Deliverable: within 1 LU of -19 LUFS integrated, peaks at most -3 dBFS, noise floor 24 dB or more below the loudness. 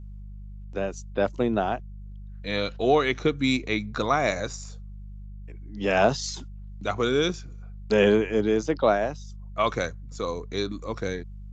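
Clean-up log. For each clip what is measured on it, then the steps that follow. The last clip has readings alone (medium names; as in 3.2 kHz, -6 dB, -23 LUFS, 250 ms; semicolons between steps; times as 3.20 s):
hum 50 Hz; highest harmonic 200 Hz; hum level -37 dBFS; loudness -26.0 LUFS; peak level -8.0 dBFS; loudness target -19.0 LUFS
-> de-hum 50 Hz, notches 4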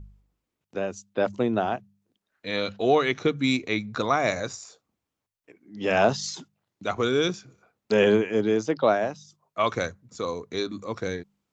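hum not found; loudness -26.0 LUFS; peak level -8.5 dBFS; loudness target -19.0 LUFS
-> trim +7 dB; peak limiter -3 dBFS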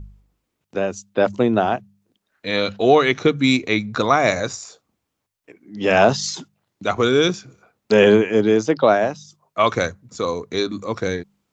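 loudness -19.0 LUFS; peak level -3.0 dBFS; noise floor -78 dBFS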